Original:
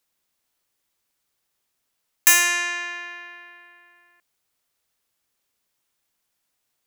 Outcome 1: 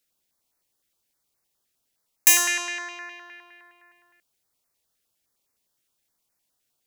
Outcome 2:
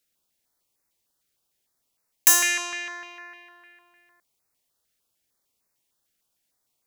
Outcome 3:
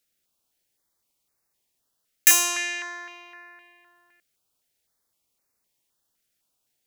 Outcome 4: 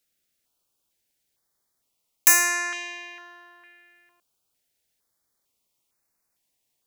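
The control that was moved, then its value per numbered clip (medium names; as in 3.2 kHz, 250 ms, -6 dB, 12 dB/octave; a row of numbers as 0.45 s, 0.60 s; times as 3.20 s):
step-sequenced notch, rate: 9.7 Hz, 6.6 Hz, 3.9 Hz, 2.2 Hz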